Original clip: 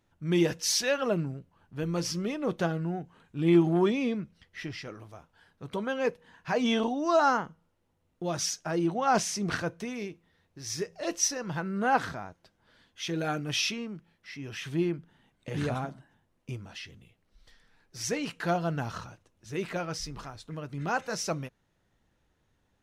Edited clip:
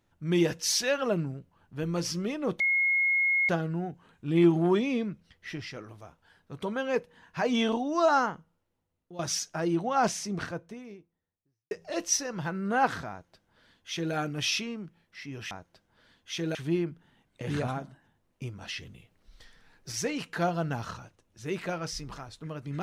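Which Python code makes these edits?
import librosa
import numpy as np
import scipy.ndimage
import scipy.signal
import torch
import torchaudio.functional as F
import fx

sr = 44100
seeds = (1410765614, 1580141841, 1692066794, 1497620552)

y = fx.studio_fade_out(x, sr, start_s=8.86, length_s=1.96)
y = fx.edit(y, sr, fx.insert_tone(at_s=2.6, length_s=0.89, hz=2160.0, db=-22.0),
    fx.fade_out_to(start_s=7.23, length_s=1.07, floor_db=-14.0),
    fx.duplicate(start_s=12.21, length_s=1.04, to_s=14.62),
    fx.clip_gain(start_s=16.68, length_s=1.31, db=5.0), tone=tone)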